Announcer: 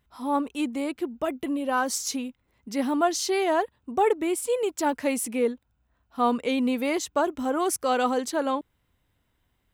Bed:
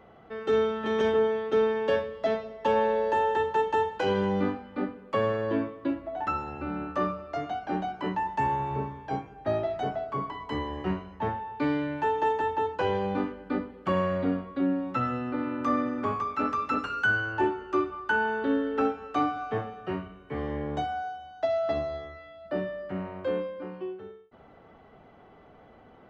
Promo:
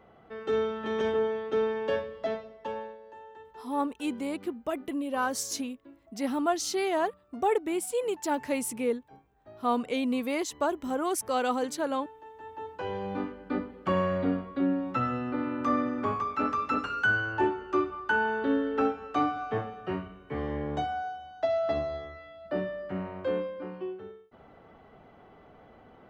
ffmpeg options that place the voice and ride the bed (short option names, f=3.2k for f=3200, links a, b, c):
-filter_complex "[0:a]adelay=3450,volume=-4dB[a];[1:a]volume=19dB,afade=t=out:st=2.18:d=0.8:silence=0.105925,afade=t=in:st=12.33:d=1.36:silence=0.0749894[b];[a][b]amix=inputs=2:normalize=0"